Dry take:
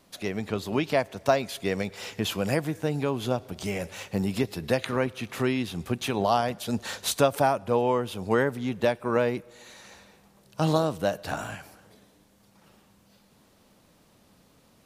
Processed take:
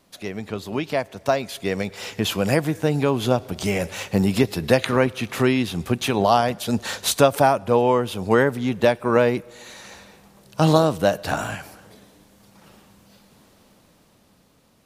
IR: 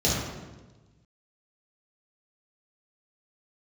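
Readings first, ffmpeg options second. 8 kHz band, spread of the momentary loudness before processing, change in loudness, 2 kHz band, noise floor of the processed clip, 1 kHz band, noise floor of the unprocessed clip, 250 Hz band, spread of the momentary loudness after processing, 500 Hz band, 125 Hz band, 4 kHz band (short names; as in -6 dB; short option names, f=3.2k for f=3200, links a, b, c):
+6.0 dB, 9 LU, +6.5 dB, +6.0 dB, -58 dBFS, +6.0 dB, -61 dBFS, +6.5 dB, 12 LU, +6.0 dB, +6.5 dB, +6.0 dB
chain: -af "dynaudnorm=f=290:g=13:m=11.5dB"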